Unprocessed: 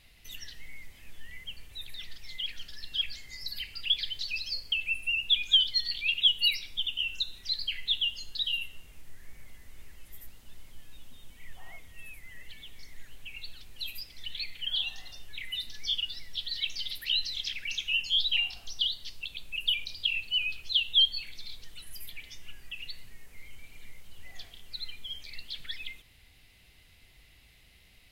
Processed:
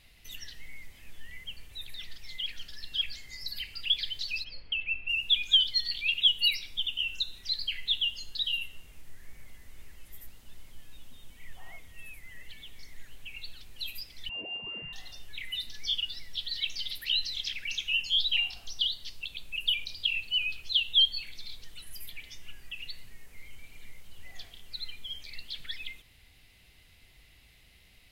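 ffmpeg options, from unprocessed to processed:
-filter_complex "[0:a]asplit=3[a][b][c];[a]afade=t=out:st=4.43:d=0.02[d];[b]lowpass=f=3.1k:w=0.5412,lowpass=f=3.1k:w=1.3066,afade=t=in:st=4.43:d=0.02,afade=t=out:st=5.08:d=0.02[e];[c]afade=t=in:st=5.08:d=0.02[f];[d][e][f]amix=inputs=3:normalize=0,asettb=1/sr,asplit=3[g][h][i];[g]atrim=end=14.294[j];[h]atrim=start=14.29:end=14.93,asetpts=PTS-STARTPTS,afade=t=in:d=0.004:c=qsin,afade=t=out:st=0.636:d=0.004:c=qsin,lowpass=f=2.4k:t=q:w=0.5098,lowpass=f=2.4k:t=q:w=0.6013,lowpass=f=2.4k:t=q:w=0.9,lowpass=f=2.4k:t=q:w=2.563,afreqshift=-2800[k];[i]atrim=start=14.926[l];[j][k]acrossfade=d=0.004:c1=hsin:c2=qsin[m];[m][l]acrossfade=d=0.004:c1=qsin:c2=hsin"

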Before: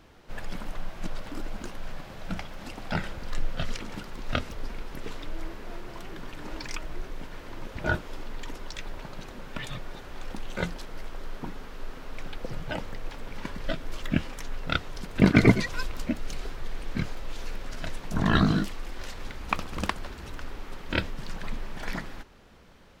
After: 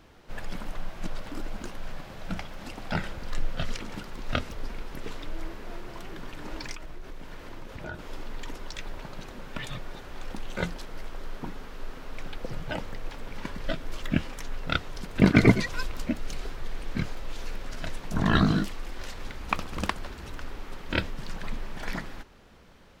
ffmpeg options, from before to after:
-filter_complex "[0:a]asettb=1/sr,asplit=3[a][b][c];[a]atrim=end=6.734[d];[b]atrim=start=6.73:end=7.99,asetpts=PTS-STARTPTS,afade=t=in:d=0.004:c=qsin,afade=t=out:st=1.256:d=0.004:c=qsin,acompressor=threshold=-35dB:ratio=4:attack=3.2:release=140:knee=1:detection=peak[e];[c]atrim=start=7.986[f];[d][e]acrossfade=d=0.004:c1=hsin:c2=qsin[g];[g][f]acrossfade=d=0.004:c1=qsin:c2=hsin"

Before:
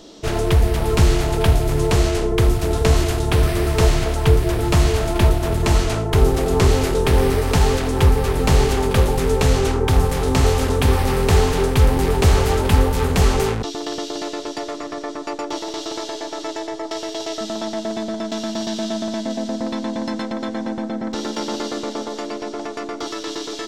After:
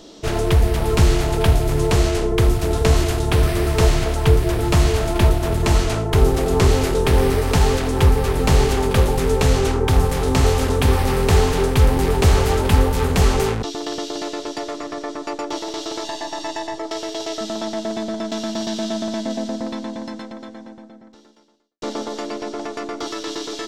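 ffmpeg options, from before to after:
-filter_complex "[0:a]asettb=1/sr,asplit=3[a][b][c];[a]atrim=end=16.044[d];[b]atrim=start=16.04:end=16.78,asetpts=PTS-STARTPTS,afade=t=in:d=0.004:c=qsin,afade=t=out:st=0.736:d=0.004:c=qsin,aecho=1:1:1.1:0.65,atrim=end_sample=32634[e];[c]atrim=start=16.776[f];[d][e]acrossfade=d=0.004:c1=hsin:c2=qsin[g];[g][f]acrossfade=d=0.004:c1=qsin:c2=hsin,asplit=2[h][i];[h]atrim=end=21.82,asetpts=PTS-STARTPTS,afade=t=out:st=19.37:d=2.45:c=qua[j];[i]atrim=start=21.82,asetpts=PTS-STARTPTS,afade=t=in:d=0.004:c=hsin[k];[j][k]concat=n=2:v=0:a=1"

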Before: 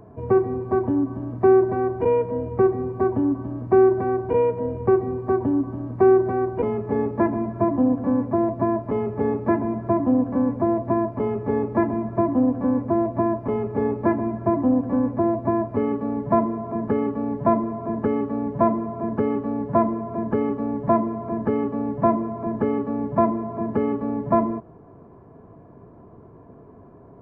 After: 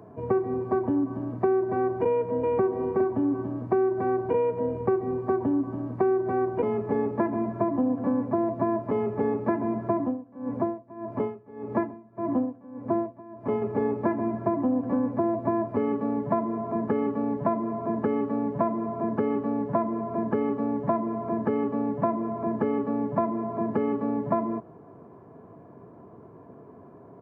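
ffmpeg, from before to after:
-filter_complex "[0:a]asplit=2[a][b];[b]afade=t=in:st=2.06:d=0.01,afade=t=out:st=2.75:d=0.01,aecho=0:1:370|740|1110:0.630957|0.126191|0.0252383[c];[a][c]amix=inputs=2:normalize=0,asettb=1/sr,asplit=3[d][e][f];[d]atrim=end=10.004[g];[e]atrim=start=10:end=13.62,asetpts=PTS-STARTPTS,afade=t=in:d=0.004:c=qsin,afade=t=out:st=3.616:d=0.004:c=qsin,aeval=exprs='val(0)*pow(10,-24*(0.5-0.5*cos(2*PI*1.7*n/s))/20)':c=same[h];[f]atrim=start=13.616[i];[g][h]acrossfade=d=0.004:c1=hsin:c2=qsin[j];[j][i]acrossfade=d=0.004:c1=qsin:c2=hsin,highpass=99,lowshelf=f=130:g=-5,acompressor=threshold=-21dB:ratio=6"

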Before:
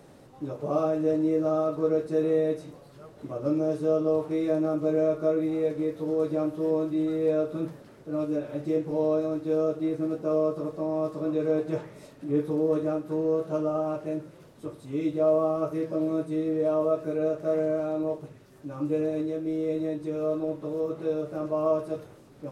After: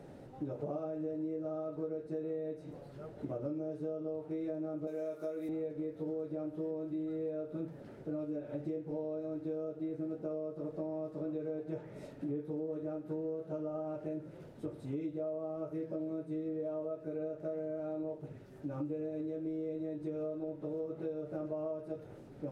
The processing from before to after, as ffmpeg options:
-filter_complex "[0:a]asettb=1/sr,asplit=3[a][b][c];[a]atrim=end=4.874[d];[b]atrim=start=4.87:end=5.49,asetpts=PTS-STARTPTS,afade=t=in:d=0.004:c=qsin,afade=t=out:st=0.616:d=0.004:c=qsin,aemphasis=mode=production:type=riaa[e];[c]atrim=start=5.486[f];[d][e]acrossfade=d=0.004:c1=hsin:c2=qsin[g];[g][f]acrossfade=d=0.004:c1=qsin:c2=hsin,equalizer=f=1.1k:w=5.7:g=-10,acompressor=threshold=-36dB:ratio=10,highshelf=f=2.6k:g=-12,volume=1dB"

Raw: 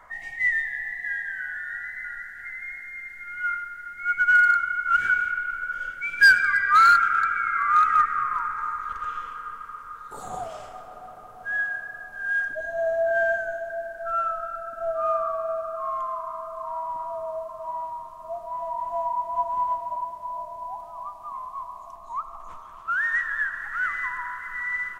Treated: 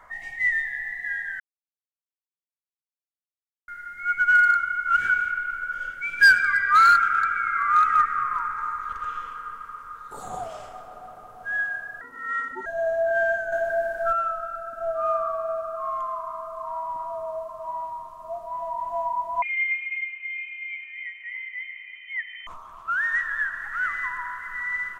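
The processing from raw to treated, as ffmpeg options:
-filter_complex "[0:a]asettb=1/sr,asplit=3[a][b][c];[a]atrim=end=12.014[d];[b]atrim=start=12.01:end=12.66,asetpts=PTS-STARTPTS,afade=t=in:d=0.004:c=qsin,afade=t=out:st=0.646:d=0.004:c=qsin,aeval=exprs='val(0)*sin(2*PI*260*n/s)':c=same[e];[c]atrim=start=12.656[f];[d][e]acrossfade=d=0.004:c1=hsin:c2=qsin[g];[g][f]acrossfade=d=0.004:c1=qsin:c2=hsin,asettb=1/sr,asplit=3[h][i][j];[h]atrim=end=13.524[k];[i]atrim=start=13.52:end=14.13,asetpts=PTS-STARTPTS,afade=t=in:d=0.004:c=qsin,afade=t=out:st=0.606:d=0.004:c=qsin,acontrast=84[l];[j]atrim=start=14.126[m];[k][l]acrossfade=d=0.004:c1=hsin:c2=qsin[n];[n][m]acrossfade=d=0.004:c1=qsin:c2=hsin,asettb=1/sr,asplit=3[o][p][q];[o]atrim=end=19.424[r];[p]atrim=start=19.42:end=22.47,asetpts=PTS-STARTPTS,afade=t=in:d=0.004:c=qsin,afade=t=out:st=3.046:d=0.004:c=qsin,lowpass=f=2.6k:t=q:w=0.5098,lowpass=f=2.6k:t=q:w=0.6013,lowpass=f=2.6k:t=q:w=0.9,lowpass=f=2.6k:t=q:w=2.563,afreqshift=-3100[s];[q]atrim=start=22.466[t];[r][s]acrossfade=d=0.004:c1=hsin:c2=qsin[u];[u][t]acrossfade=d=0.004:c1=qsin:c2=hsin,asplit=3[v][w][x];[v]atrim=end=1.4,asetpts=PTS-STARTPTS,afade=t=out:st=1.396:d=0.004:c=hsin[y];[w]atrim=start=1.4:end=3.68,asetpts=PTS-STARTPTS,volume=0[z];[x]atrim=start=3.68,asetpts=PTS-STARTPTS,afade=t=in:d=0.004:c=hsin[aa];[y][z][aa]concat=n=3:v=0:a=1"

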